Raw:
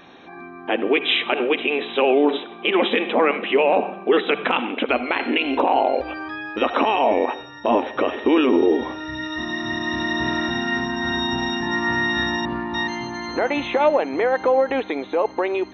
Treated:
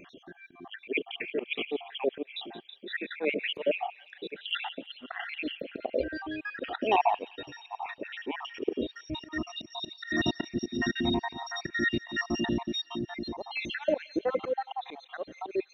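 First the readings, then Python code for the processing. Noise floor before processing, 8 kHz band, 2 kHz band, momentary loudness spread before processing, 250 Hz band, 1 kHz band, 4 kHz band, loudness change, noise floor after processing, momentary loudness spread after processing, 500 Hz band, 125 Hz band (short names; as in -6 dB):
-40 dBFS, n/a, -10.5 dB, 8 LU, -11.5 dB, -12.0 dB, -10.0 dB, -11.5 dB, -59 dBFS, 12 LU, -13.5 dB, -6.0 dB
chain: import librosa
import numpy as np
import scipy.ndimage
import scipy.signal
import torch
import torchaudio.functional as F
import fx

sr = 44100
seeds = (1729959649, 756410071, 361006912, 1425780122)

y = fx.spec_dropout(x, sr, seeds[0], share_pct=72)
y = fx.auto_swell(y, sr, attack_ms=165.0)
y = fx.filter_lfo_notch(y, sr, shape='saw_up', hz=1.4, low_hz=770.0, high_hz=1600.0, q=1.7)
y = fx.echo_wet_highpass(y, sr, ms=174, feedback_pct=64, hz=2300.0, wet_db=-14.5)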